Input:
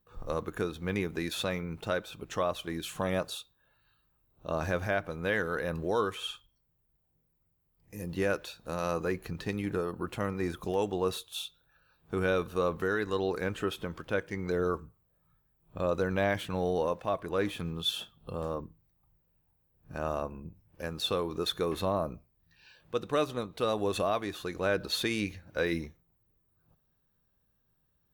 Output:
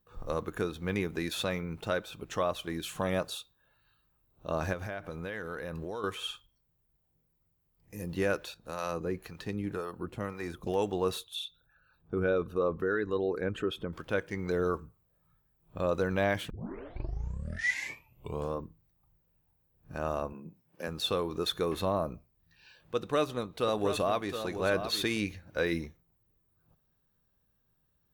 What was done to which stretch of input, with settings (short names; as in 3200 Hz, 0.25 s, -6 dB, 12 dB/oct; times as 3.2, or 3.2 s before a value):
4.73–6.04 compressor, threshold -34 dBFS
8.54–10.67 harmonic tremolo 1.9 Hz, crossover 530 Hz
11.24–13.93 formant sharpening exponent 1.5
16.5 tape start 2.09 s
20.33–20.88 HPF 150 Hz 24 dB/oct
22.95–25.17 echo 0.718 s -8.5 dB